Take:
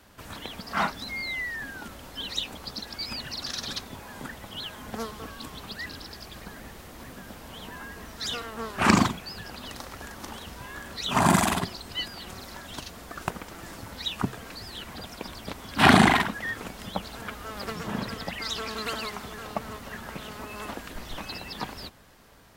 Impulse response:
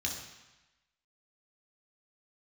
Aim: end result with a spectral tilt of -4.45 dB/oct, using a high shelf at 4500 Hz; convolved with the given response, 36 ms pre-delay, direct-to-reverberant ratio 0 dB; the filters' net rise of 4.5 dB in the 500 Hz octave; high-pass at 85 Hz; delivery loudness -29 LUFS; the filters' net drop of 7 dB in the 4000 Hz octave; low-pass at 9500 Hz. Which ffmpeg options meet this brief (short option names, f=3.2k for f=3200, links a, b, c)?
-filter_complex "[0:a]highpass=85,lowpass=9.5k,equalizer=f=500:t=o:g=6.5,equalizer=f=4k:t=o:g=-6,highshelf=f=4.5k:g=-6,asplit=2[a][b];[1:a]atrim=start_sample=2205,adelay=36[c];[b][c]afir=irnorm=-1:irlink=0,volume=-3.5dB[d];[a][d]amix=inputs=2:normalize=0,volume=-3.5dB"